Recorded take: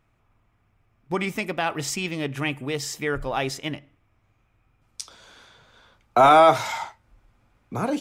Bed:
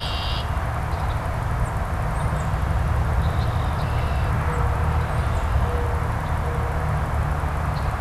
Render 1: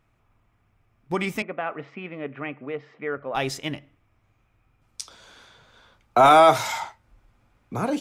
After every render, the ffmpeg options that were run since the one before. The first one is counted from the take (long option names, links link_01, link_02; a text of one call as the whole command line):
ffmpeg -i in.wav -filter_complex "[0:a]asettb=1/sr,asplit=3[link_01][link_02][link_03];[link_01]atrim=end=1.424[link_04];[link_02]atrim=start=1.42:end=3.35,asetpts=PTS-STARTPTS,afade=type=in:duration=0.004:curve=qsin,afade=type=out:start_time=1.926:duration=0.004:curve=qsin,highpass=260,equalizer=frequency=340:width_type=q:width=4:gain=-7,equalizer=frequency=890:width_type=q:width=4:gain=-8,equalizer=frequency=1700:width_type=q:width=4:gain=-5,lowpass=frequency=2000:width=0.5412,lowpass=frequency=2000:width=1.3066[link_05];[link_03]atrim=start=3.346[link_06];[link_04][link_05]acrossfade=duration=0.004:curve1=hsin:curve2=qsin[link_07];[link_07][link_06]acrossfade=duration=0.004:curve1=qsin:curve2=hsin,asettb=1/sr,asplit=3[link_08][link_09][link_10];[link_08]atrim=end=6.254[link_11];[link_09]atrim=start=6.25:end=6.8,asetpts=PTS-STARTPTS,afade=type=in:duration=0.004:curve=qsin,afade=type=out:start_time=0.546:duration=0.004:curve=qsin,highshelf=frequency=5800:gain=6.5[link_12];[link_10]atrim=start=6.796[link_13];[link_11][link_12]acrossfade=duration=0.004:curve1=hsin:curve2=qsin[link_14];[link_14][link_13]acrossfade=duration=0.004:curve1=qsin:curve2=hsin" out.wav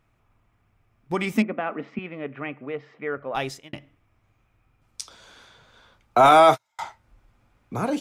ffmpeg -i in.wav -filter_complex "[0:a]asettb=1/sr,asplit=3[link_01][link_02][link_03];[link_01]atrim=end=1.334[link_04];[link_02]atrim=start=1.33:end=1.99,asetpts=PTS-STARTPTS,afade=type=in:duration=0.004:curve=qsin,afade=type=out:start_time=0.656:duration=0.004:curve=qsin,highpass=frequency=220:width_type=q:width=4.9[link_05];[link_03]atrim=start=1.986[link_06];[link_04][link_05]acrossfade=duration=0.004:curve1=hsin:curve2=qsin[link_07];[link_07][link_06]acrossfade=duration=0.004:curve1=qsin:curve2=hsin,asettb=1/sr,asplit=3[link_08][link_09][link_10];[link_08]atrim=end=6.314[link_11];[link_09]atrim=start=6.31:end=6.79,asetpts=PTS-STARTPTS,afade=type=in:duration=0.004:curve=qsin,afade=type=out:start_time=0.476:duration=0.004:curve=qsin,agate=range=-47dB:threshold=-22dB:ratio=16:release=100:detection=peak[link_12];[link_10]atrim=start=6.786[link_13];[link_11][link_12]acrossfade=duration=0.004:curve1=hsin:curve2=qsin[link_14];[link_14][link_13]acrossfade=duration=0.004:curve1=qsin:curve2=hsin,asplit=2[link_15][link_16];[link_15]atrim=end=3.73,asetpts=PTS-STARTPTS,afade=type=out:start_time=3.33:duration=0.4[link_17];[link_16]atrim=start=3.73,asetpts=PTS-STARTPTS,afade=type=in:duration=0.004:curve=hsin[link_18];[link_17][link_18]concat=n=2:v=0:a=1" out.wav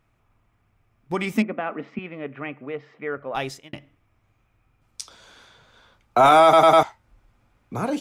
ffmpeg -i in.wav -filter_complex "[0:a]asplit=5[link_01][link_02][link_03][link_04][link_05];[link_01]atrim=end=6.532[link_06];[link_02]atrim=start=6.428:end=6.532[link_07];[link_03]atrim=start=6.428:end=6.532[link_08];[link_04]atrim=start=6.428:end=6.532[link_09];[link_05]atrim=start=6.828[link_10];[link_06][link_07]acrossfade=duration=0.004:curve1=hsin:curve2=hsin[link_11];[link_11][link_08]acrossfade=duration=0.004:curve1=hsin:curve2=hsin[link_12];[link_12][link_09]acrossfade=duration=0.004:curve1=hsin:curve2=hsin[link_13];[link_13][link_10]acrossfade=duration=0.004:curve1=hsin:curve2=hsin" out.wav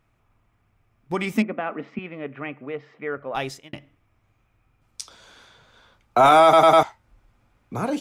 ffmpeg -i in.wav -af anull out.wav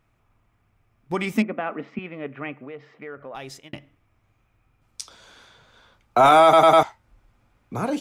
ffmpeg -i in.wav -filter_complex "[0:a]asettb=1/sr,asplit=3[link_01][link_02][link_03];[link_01]atrim=end=2.634[link_04];[link_02]atrim=start=2.63:end=3.61,asetpts=PTS-STARTPTS,afade=type=in:duration=0.004:curve=qsin,afade=type=out:start_time=0.976:duration=0.004:curve=qsin,acompressor=threshold=-35dB:ratio=3:attack=3.2:release=140:knee=1:detection=peak[link_05];[link_03]atrim=start=3.606[link_06];[link_04][link_05]acrossfade=duration=0.004:curve1=hsin:curve2=qsin[link_07];[link_07][link_06]acrossfade=duration=0.004:curve1=qsin:curve2=hsin,asettb=1/sr,asplit=3[link_08][link_09][link_10];[link_08]atrim=end=6.314[link_11];[link_09]atrim=start=6.31:end=6.82,asetpts=PTS-STARTPTS,afade=type=in:duration=0.004:curve=qsin,afade=type=out:start_time=0.506:duration=0.004:curve=qsin,asuperstop=centerf=5300:order=4:qfactor=6.6[link_12];[link_10]atrim=start=6.816[link_13];[link_11][link_12]acrossfade=duration=0.004:curve1=hsin:curve2=qsin[link_14];[link_14][link_13]acrossfade=duration=0.004:curve1=qsin:curve2=hsin" out.wav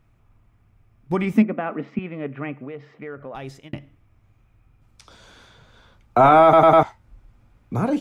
ffmpeg -i in.wav -filter_complex "[0:a]lowshelf=frequency=270:gain=9.5,acrossover=split=2700[link_01][link_02];[link_02]acompressor=threshold=-48dB:ratio=4:attack=1:release=60[link_03];[link_01][link_03]amix=inputs=2:normalize=0" out.wav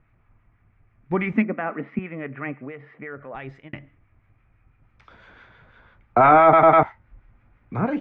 ffmpeg -i in.wav -filter_complex "[0:a]acrossover=split=1100[link_01][link_02];[link_01]aeval=exprs='val(0)*(1-0.5/2+0.5/2*cos(2*PI*6*n/s))':channel_layout=same[link_03];[link_02]aeval=exprs='val(0)*(1-0.5/2-0.5/2*cos(2*PI*6*n/s))':channel_layout=same[link_04];[link_03][link_04]amix=inputs=2:normalize=0,lowpass=frequency=2000:width_type=q:width=2.2" out.wav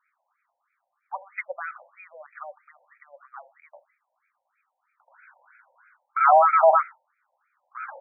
ffmpeg -i in.wav -af "aexciter=amount=4.2:drive=9.3:freq=3000,afftfilt=real='re*between(b*sr/1024,680*pow(1800/680,0.5+0.5*sin(2*PI*3.1*pts/sr))/1.41,680*pow(1800/680,0.5+0.5*sin(2*PI*3.1*pts/sr))*1.41)':imag='im*between(b*sr/1024,680*pow(1800/680,0.5+0.5*sin(2*PI*3.1*pts/sr))/1.41,680*pow(1800/680,0.5+0.5*sin(2*PI*3.1*pts/sr))*1.41)':win_size=1024:overlap=0.75" out.wav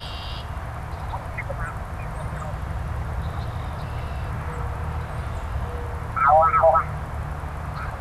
ffmpeg -i in.wav -i bed.wav -filter_complex "[1:a]volume=-7dB[link_01];[0:a][link_01]amix=inputs=2:normalize=0" out.wav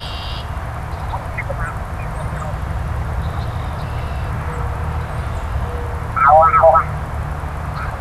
ffmpeg -i in.wav -af "volume=6.5dB,alimiter=limit=-1dB:level=0:latency=1" out.wav